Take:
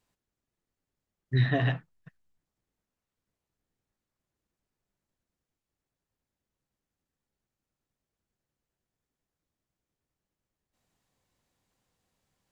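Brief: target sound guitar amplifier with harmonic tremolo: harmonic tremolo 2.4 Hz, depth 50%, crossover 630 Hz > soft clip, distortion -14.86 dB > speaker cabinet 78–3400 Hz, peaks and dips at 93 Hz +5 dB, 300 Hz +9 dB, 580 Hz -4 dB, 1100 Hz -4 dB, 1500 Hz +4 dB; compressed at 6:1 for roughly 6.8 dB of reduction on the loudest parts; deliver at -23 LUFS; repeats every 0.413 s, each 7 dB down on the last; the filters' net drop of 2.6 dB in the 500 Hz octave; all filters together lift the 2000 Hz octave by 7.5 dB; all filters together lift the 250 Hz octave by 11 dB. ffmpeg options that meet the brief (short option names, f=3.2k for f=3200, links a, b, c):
-filter_complex "[0:a]equalizer=f=250:t=o:g=9,equalizer=f=500:t=o:g=-7,equalizer=f=2k:t=o:g=7.5,acompressor=threshold=-25dB:ratio=6,aecho=1:1:413|826|1239|1652|2065:0.447|0.201|0.0905|0.0407|0.0183,acrossover=split=630[a][b];[a]aeval=exprs='val(0)*(1-0.5/2+0.5/2*cos(2*PI*2.4*n/s))':c=same[c];[b]aeval=exprs='val(0)*(1-0.5/2-0.5/2*cos(2*PI*2.4*n/s))':c=same[d];[c][d]amix=inputs=2:normalize=0,asoftclip=threshold=-27dB,highpass=78,equalizer=f=93:t=q:w=4:g=5,equalizer=f=300:t=q:w=4:g=9,equalizer=f=580:t=q:w=4:g=-4,equalizer=f=1.1k:t=q:w=4:g=-4,equalizer=f=1.5k:t=q:w=4:g=4,lowpass=f=3.4k:w=0.5412,lowpass=f=3.4k:w=1.3066,volume=13dB"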